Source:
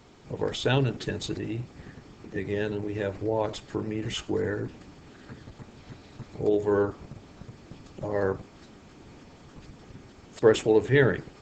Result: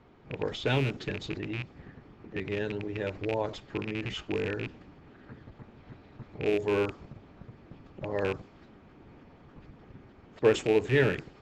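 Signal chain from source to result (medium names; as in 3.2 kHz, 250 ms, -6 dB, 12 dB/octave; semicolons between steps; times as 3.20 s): rattle on loud lows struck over -31 dBFS, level -21 dBFS; level-controlled noise filter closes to 2.2 kHz, open at -18.5 dBFS; trim -3.5 dB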